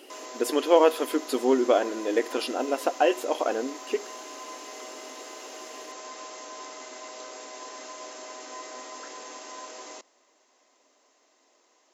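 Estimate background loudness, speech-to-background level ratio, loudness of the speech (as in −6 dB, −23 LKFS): −40.5 LKFS, 15.0 dB, −25.5 LKFS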